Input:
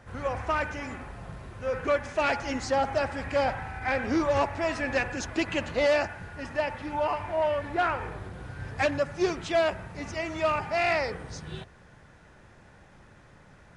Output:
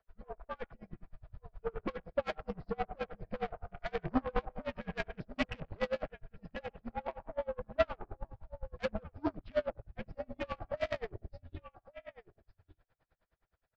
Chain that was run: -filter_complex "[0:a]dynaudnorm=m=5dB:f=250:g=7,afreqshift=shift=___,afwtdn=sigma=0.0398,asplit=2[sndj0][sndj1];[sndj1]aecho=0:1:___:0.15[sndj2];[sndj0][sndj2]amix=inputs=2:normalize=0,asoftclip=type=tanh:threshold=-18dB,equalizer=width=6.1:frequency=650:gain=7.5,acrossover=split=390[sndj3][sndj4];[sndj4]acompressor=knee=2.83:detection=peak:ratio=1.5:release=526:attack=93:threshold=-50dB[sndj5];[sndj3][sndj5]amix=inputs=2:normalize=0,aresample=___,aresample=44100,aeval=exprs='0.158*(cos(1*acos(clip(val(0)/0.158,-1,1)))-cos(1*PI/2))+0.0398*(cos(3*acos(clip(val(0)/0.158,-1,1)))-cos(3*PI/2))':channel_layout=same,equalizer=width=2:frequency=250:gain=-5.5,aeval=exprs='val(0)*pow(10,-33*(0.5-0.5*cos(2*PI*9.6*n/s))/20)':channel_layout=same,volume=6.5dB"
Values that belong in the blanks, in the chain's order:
-70, 1162, 11025